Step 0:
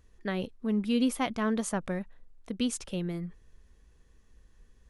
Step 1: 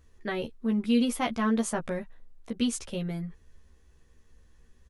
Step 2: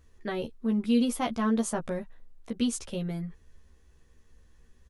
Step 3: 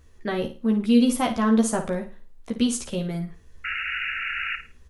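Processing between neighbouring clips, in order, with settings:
doubler 13 ms -3 dB
dynamic EQ 2100 Hz, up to -5 dB, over -48 dBFS, Q 1.3
painted sound noise, 3.64–4.56, 1300–2900 Hz -35 dBFS; on a send: flutter echo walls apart 9.3 m, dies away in 0.33 s; on the sum: gain +5.5 dB

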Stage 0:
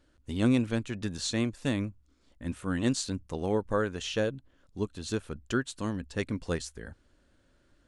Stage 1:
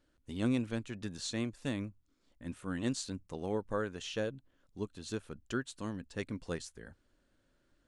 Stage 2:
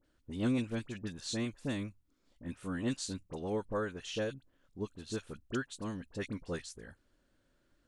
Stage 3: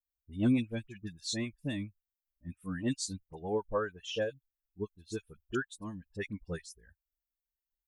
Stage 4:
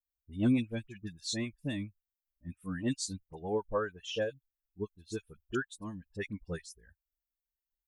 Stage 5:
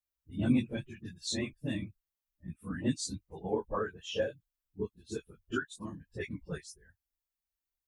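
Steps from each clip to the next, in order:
bell 69 Hz -9.5 dB 0.46 oct; gain -6.5 dB
dispersion highs, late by 43 ms, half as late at 1700 Hz
per-bin expansion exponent 2; gain +6 dB
nothing audible
phase scrambler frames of 50 ms

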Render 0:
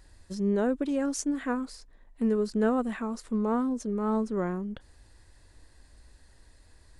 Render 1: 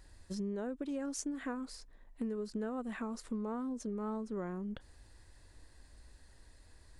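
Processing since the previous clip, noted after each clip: compressor 6:1, threshold -33 dBFS, peak gain reduction 12.5 dB; gain -2.5 dB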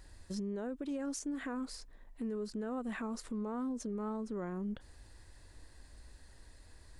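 limiter -34 dBFS, peak gain reduction 11 dB; gain +2.5 dB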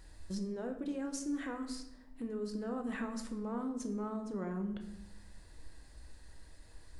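shoebox room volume 300 m³, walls mixed, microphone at 0.64 m; gain -1 dB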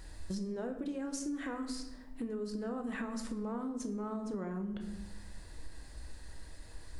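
compressor, threshold -41 dBFS, peak gain reduction 8.5 dB; gain +6 dB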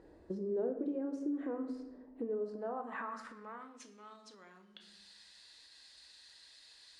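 band-pass sweep 410 Hz -> 3900 Hz, 2.12–4.21; gain +7.5 dB

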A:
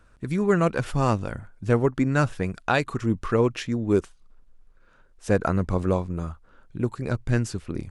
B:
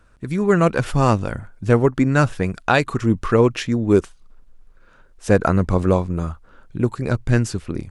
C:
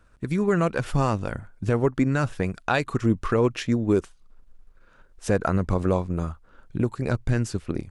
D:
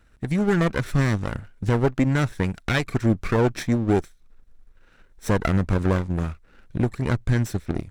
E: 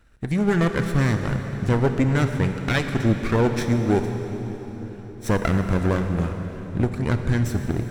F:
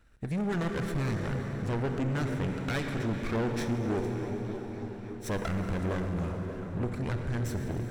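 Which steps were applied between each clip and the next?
AGC gain up to 4.5 dB; gain +2 dB
transient shaper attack +4 dB, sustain -2 dB; limiter -7 dBFS, peak gain reduction 7.5 dB; gain -4 dB
minimum comb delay 0.52 ms; gain +1.5 dB
reverb RT60 4.5 s, pre-delay 23 ms, DRR 6 dB
soft clip -21.5 dBFS, distortion -9 dB; delay with a stepping band-pass 0.294 s, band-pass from 290 Hz, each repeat 0.7 oct, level -5 dB; gain -5 dB

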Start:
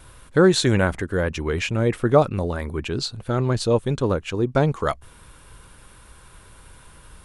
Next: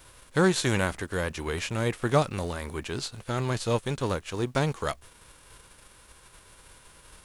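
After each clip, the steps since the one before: spectral whitening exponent 0.6; gain -7 dB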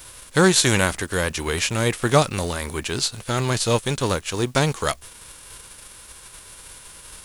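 high shelf 3000 Hz +9 dB; gain +5.5 dB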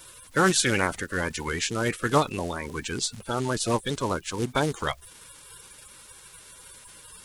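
bin magnitudes rounded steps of 30 dB; Doppler distortion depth 0.16 ms; gain -4.5 dB

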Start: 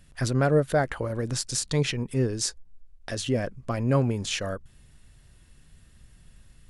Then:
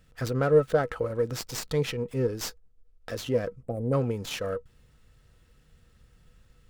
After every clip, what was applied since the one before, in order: small resonant body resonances 480/1300 Hz, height 15 dB, ringing for 90 ms; spectral delete 3.63–3.93, 850–7700 Hz; running maximum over 3 samples; gain -4.5 dB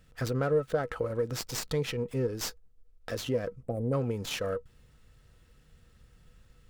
compressor 2:1, threshold -28 dBFS, peak gain reduction 7.5 dB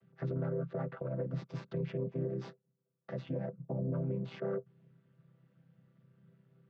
chord vocoder major triad, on C3; air absorption 240 m; limiter -27.5 dBFS, peak gain reduction 10.5 dB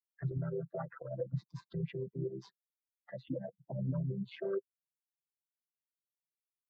per-bin expansion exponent 3; gain +5 dB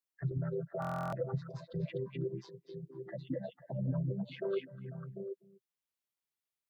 delay with a stepping band-pass 0.248 s, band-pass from 2800 Hz, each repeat -1.4 oct, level -1.5 dB; stuck buffer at 0.8, samples 1024, times 13; gain +1 dB

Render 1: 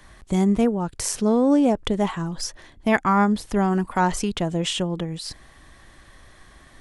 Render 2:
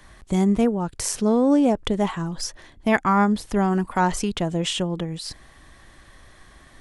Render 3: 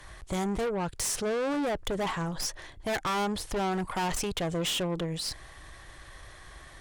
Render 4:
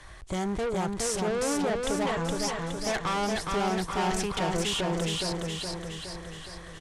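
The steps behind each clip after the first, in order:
nothing audible
bell 230 Hz -14 dB 0.56 oct; tube stage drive 30 dB, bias 0.35; gain +3 dB
LPF 11000 Hz 24 dB/oct; on a send: feedback echo 0.417 s, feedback 57%, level -3 dB; on the sum: Doppler distortion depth 0.12 ms

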